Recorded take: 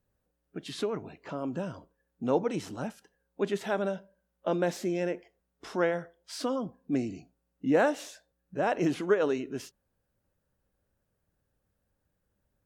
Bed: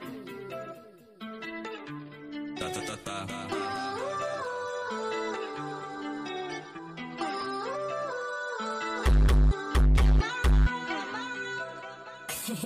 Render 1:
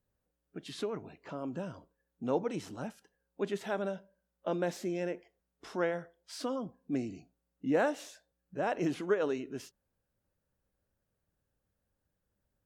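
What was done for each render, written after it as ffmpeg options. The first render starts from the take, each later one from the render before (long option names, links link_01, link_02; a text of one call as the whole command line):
ffmpeg -i in.wav -af "volume=-4.5dB" out.wav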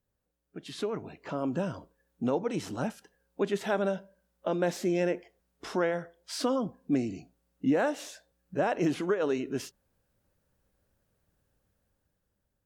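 ffmpeg -i in.wav -af "dynaudnorm=framelen=230:gausssize=9:maxgain=8dB,alimiter=limit=-17.5dB:level=0:latency=1:release=402" out.wav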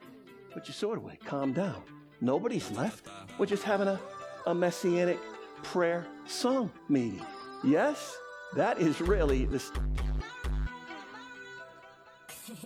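ffmpeg -i in.wav -i bed.wav -filter_complex "[1:a]volume=-11dB[link_01];[0:a][link_01]amix=inputs=2:normalize=0" out.wav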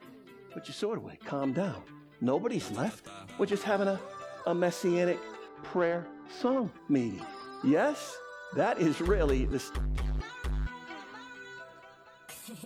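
ffmpeg -i in.wav -filter_complex "[0:a]asettb=1/sr,asplit=3[link_01][link_02][link_03];[link_01]atrim=end=5.484[link_04];[link_02]atrim=start=5.48:end=6.65,asetpts=PTS-STARTPTS,afade=type=in:duration=0.004:curve=qsin,afade=type=out:start_time=1.166:duration=0.004:curve=qsin,adynamicsmooth=sensitivity=2.5:basefreq=2100[link_05];[link_03]atrim=start=6.646[link_06];[link_04][link_05]acrossfade=duration=0.004:curve1=hsin:curve2=qsin[link_07];[link_07][link_06]acrossfade=duration=0.004:curve1=qsin:curve2=hsin" out.wav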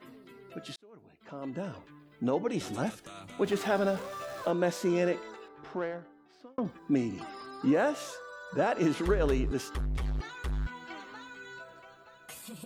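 ffmpeg -i in.wav -filter_complex "[0:a]asettb=1/sr,asplit=3[link_01][link_02][link_03];[link_01]atrim=end=3.444[link_04];[link_02]atrim=start=3.44:end=4.51,asetpts=PTS-STARTPTS,afade=type=in:duration=0.004:curve=qsin,afade=type=out:start_time=1.066:duration=0.004:curve=qsin,aeval=exprs='val(0)+0.5*0.00794*sgn(val(0))':channel_layout=same[link_05];[link_03]atrim=start=4.506[link_06];[link_04][link_05]acrossfade=duration=0.004:curve1=hsin:curve2=qsin[link_07];[link_07][link_06]acrossfade=duration=0.004:curve1=qsin:curve2=hsin,asplit=3[link_08][link_09][link_10];[link_08]atrim=end=0.76,asetpts=PTS-STARTPTS,afade=type=out:start_time=0.756:duration=0.004:curve=hsin[link_11];[link_09]atrim=start=0.76:end=6.58,asetpts=PTS-STARTPTS,afade=type=in:duration=1.65,afade=type=out:start_time=4.31:duration=1.51[link_12];[link_10]atrim=start=6.58,asetpts=PTS-STARTPTS,afade=type=in:duration=0.004:curve=hsin[link_13];[link_11][link_12][link_13]concat=n=3:v=0:a=1" out.wav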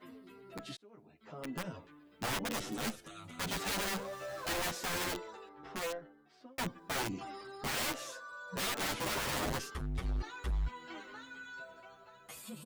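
ffmpeg -i in.wav -filter_complex "[0:a]aeval=exprs='(mod(23.7*val(0)+1,2)-1)/23.7':channel_layout=same,asplit=2[link_01][link_02];[link_02]adelay=9,afreqshift=0.61[link_03];[link_01][link_03]amix=inputs=2:normalize=1" out.wav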